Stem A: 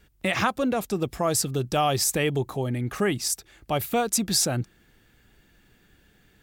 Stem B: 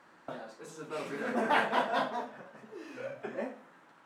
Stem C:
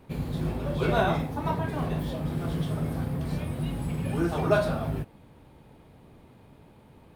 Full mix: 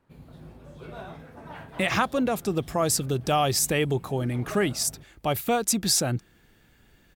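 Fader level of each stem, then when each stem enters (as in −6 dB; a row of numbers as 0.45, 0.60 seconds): 0.0, −17.0, −16.5 decibels; 1.55, 0.00, 0.00 seconds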